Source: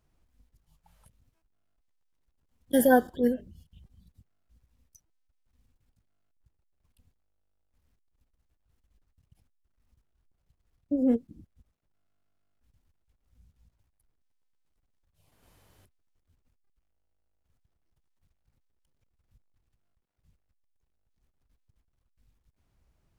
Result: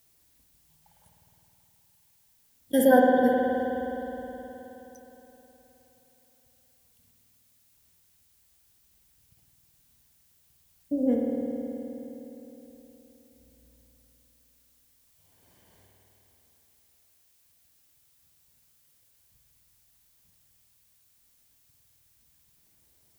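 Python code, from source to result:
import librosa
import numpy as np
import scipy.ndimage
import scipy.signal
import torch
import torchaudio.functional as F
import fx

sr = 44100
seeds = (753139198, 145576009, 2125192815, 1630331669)

y = fx.notch_comb(x, sr, f0_hz=1300.0)
y = fx.rev_spring(y, sr, rt60_s=3.8, pass_ms=(52,), chirp_ms=20, drr_db=-2.0)
y = fx.dmg_noise_colour(y, sr, seeds[0], colour='blue', level_db=-65.0)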